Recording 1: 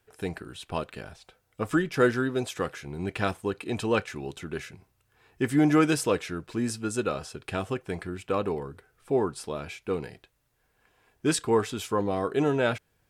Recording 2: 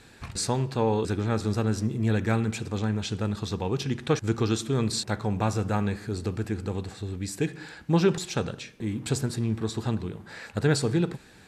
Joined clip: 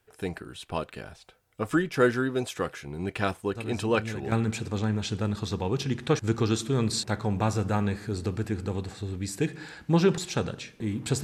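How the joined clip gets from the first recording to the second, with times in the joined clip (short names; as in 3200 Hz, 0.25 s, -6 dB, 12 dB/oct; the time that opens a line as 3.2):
recording 1
3.55 add recording 2 from 1.55 s 0.77 s -11 dB
4.32 switch to recording 2 from 2.32 s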